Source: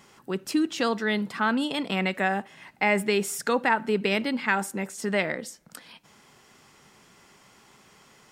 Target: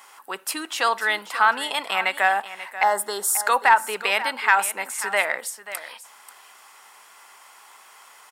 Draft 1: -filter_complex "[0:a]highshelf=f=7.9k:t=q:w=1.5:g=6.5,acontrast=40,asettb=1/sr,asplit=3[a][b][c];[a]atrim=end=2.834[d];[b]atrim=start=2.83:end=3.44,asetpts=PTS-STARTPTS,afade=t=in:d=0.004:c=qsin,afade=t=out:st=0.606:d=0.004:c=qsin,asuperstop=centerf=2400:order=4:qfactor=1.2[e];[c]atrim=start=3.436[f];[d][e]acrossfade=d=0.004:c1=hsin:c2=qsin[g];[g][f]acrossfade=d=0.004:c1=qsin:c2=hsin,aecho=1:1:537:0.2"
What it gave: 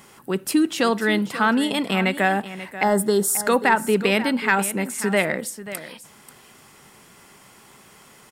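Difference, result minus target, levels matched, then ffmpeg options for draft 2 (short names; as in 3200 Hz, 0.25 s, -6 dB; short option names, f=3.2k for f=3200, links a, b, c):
1000 Hz band -4.0 dB
-filter_complex "[0:a]highpass=f=900:t=q:w=1.6,highshelf=f=7.9k:t=q:w=1.5:g=6.5,acontrast=40,asettb=1/sr,asplit=3[a][b][c];[a]atrim=end=2.834[d];[b]atrim=start=2.83:end=3.44,asetpts=PTS-STARTPTS,afade=t=in:d=0.004:c=qsin,afade=t=out:st=0.606:d=0.004:c=qsin,asuperstop=centerf=2400:order=4:qfactor=1.2[e];[c]atrim=start=3.436[f];[d][e]acrossfade=d=0.004:c1=hsin:c2=qsin[g];[g][f]acrossfade=d=0.004:c1=qsin:c2=hsin,aecho=1:1:537:0.2"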